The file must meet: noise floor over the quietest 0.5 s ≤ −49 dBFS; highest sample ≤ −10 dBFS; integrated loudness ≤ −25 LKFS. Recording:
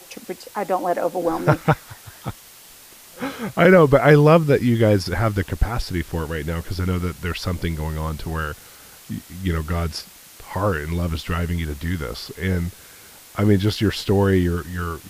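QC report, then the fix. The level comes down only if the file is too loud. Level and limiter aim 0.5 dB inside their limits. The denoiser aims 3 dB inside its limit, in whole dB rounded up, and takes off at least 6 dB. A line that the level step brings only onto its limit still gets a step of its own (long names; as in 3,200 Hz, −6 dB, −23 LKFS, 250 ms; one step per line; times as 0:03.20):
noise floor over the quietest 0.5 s −45 dBFS: out of spec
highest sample −2.5 dBFS: out of spec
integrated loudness −21.0 LKFS: out of spec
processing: level −4.5 dB
brickwall limiter −10.5 dBFS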